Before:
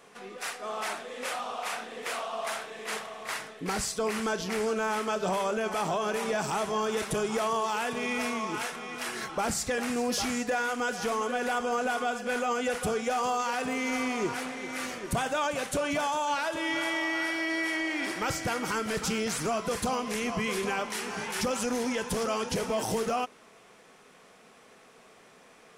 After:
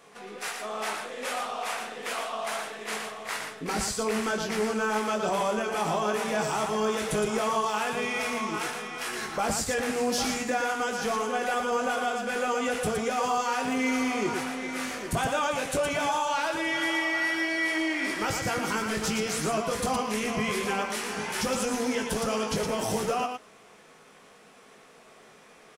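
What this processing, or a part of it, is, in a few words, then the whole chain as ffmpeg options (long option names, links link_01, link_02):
slapback doubling: -filter_complex "[0:a]asplit=3[link_01][link_02][link_03];[link_02]adelay=19,volume=-5.5dB[link_04];[link_03]adelay=116,volume=-5dB[link_05];[link_01][link_04][link_05]amix=inputs=3:normalize=0"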